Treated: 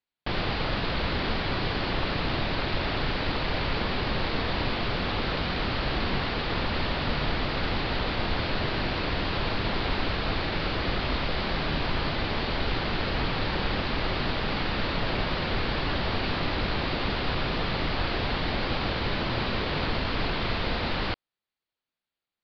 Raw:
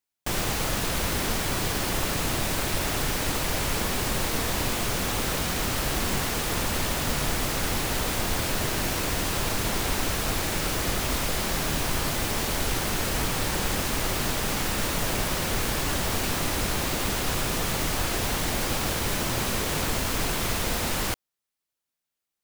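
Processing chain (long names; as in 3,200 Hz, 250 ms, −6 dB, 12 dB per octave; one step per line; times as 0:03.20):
Butterworth low-pass 4,700 Hz 72 dB per octave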